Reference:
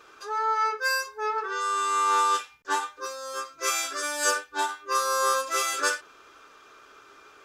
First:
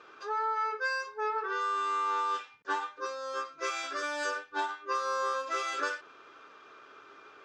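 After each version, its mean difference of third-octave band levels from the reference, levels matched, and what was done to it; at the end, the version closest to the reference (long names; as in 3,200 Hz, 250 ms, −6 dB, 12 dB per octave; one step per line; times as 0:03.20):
4.0 dB: high-pass filter 130 Hz 12 dB per octave
downward compressor, threshold −27 dBFS, peak gain reduction 8 dB
high-frequency loss of the air 160 metres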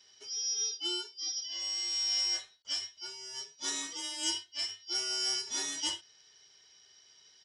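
9.0 dB: band-splitting scrambler in four parts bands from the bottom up 4321
high-pass filter 57 Hz
downsampling to 22,050 Hz
level −8.5 dB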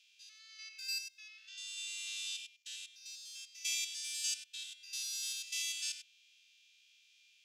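12.5 dB: spectrum averaged block by block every 100 ms
Butterworth high-pass 2,600 Hz 48 dB per octave
high-shelf EQ 5,700 Hz −11.5 dB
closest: first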